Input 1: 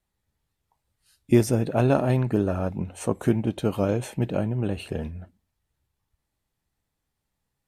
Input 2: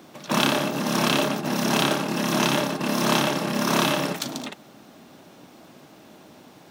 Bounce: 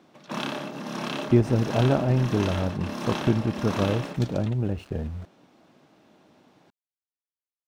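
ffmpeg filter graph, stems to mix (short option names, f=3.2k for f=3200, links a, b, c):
-filter_complex "[0:a]lowpass=f=2.2k:p=1,lowshelf=f=110:g=8.5,aeval=exprs='val(0)*gte(abs(val(0)),0.00841)':c=same,volume=-2.5dB[a];[1:a]highshelf=f=6k:g=-4.5,volume=-9dB[b];[a][b]amix=inputs=2:normalize=0,highshelf=f=9.1k:g=-11"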